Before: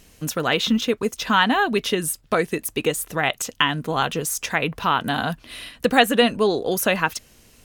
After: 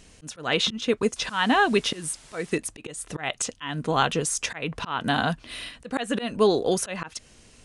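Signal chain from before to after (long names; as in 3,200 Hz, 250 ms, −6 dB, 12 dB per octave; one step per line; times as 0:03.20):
volume swells 236 ms
0:01.16–0:02.58: bit-depth reduction 8 bits, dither triangular
downsampling to 22,050 Hz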